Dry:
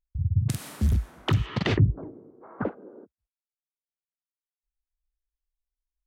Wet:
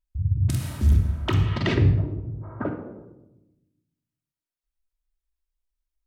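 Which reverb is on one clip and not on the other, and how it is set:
rectangular room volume 3,300 cubic metres, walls furnished, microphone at 2.8 metres
level −1 dB

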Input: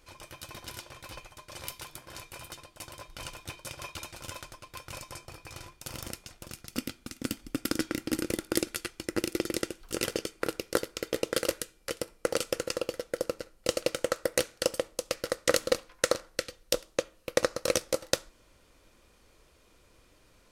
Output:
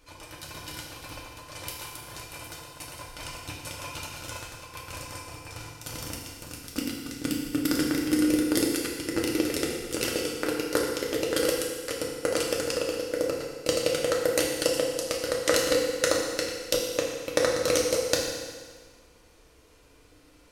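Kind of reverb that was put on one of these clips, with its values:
feedback delay network reverb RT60 1.6 s, low-frequency decay 0.95×, high-frequency decay 0.95×, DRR −2 dB

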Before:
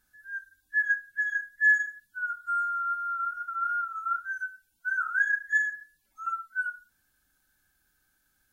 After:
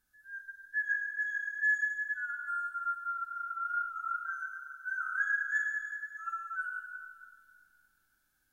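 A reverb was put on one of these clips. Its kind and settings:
comb and all-pass reverb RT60 2.1 s, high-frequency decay 0.95×, pre-delay 35 ms, DRR 1.5 dB
level −7 dB

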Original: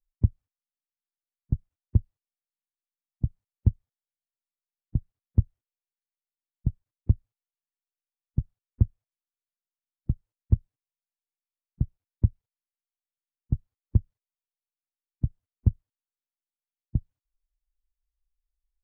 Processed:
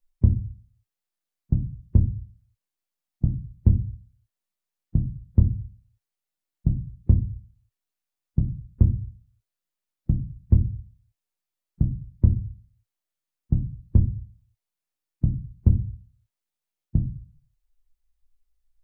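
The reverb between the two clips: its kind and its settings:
rectangular room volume 120 cubic metres, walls furnished, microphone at 0.96 metres
level +4 dB

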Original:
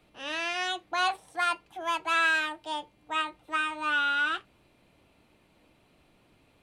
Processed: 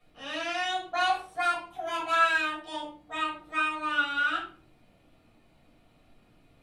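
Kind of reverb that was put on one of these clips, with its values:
rectangular room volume 330 cubic metres, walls furnished, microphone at 6.1 metres
level −10 dB

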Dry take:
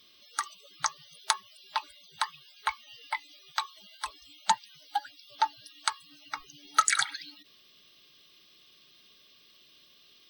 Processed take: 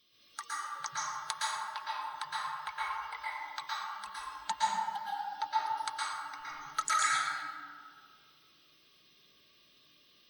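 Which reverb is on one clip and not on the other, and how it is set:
dense smooth reverb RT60 1.9 s, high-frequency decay 0.35×, pre-delay 105 ms, DRR −8.5 dB
level −11 dB

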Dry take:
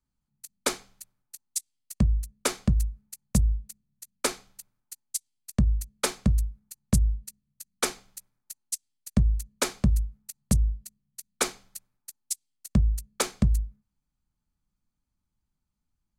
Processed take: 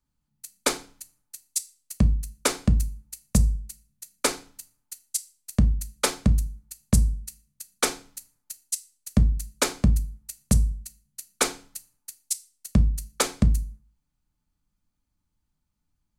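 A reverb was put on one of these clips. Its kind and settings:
feedback delay network reverb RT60 0.37 s, low-frequency decay 1.25×, high-frequency decay 0.95×, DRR 10.5 dB
level +3 dB

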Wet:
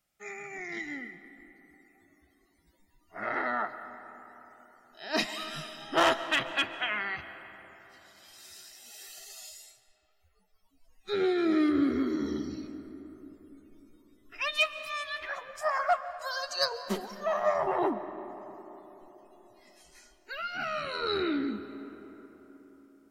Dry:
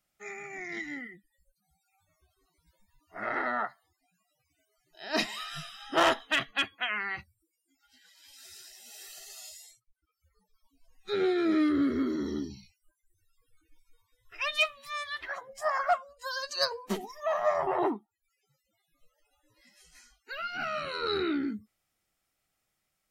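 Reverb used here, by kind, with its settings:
comb and all-pass reverb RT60 4.2 s, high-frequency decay 0.45×, pre-delay 95 ms, DRR 11.5 dB

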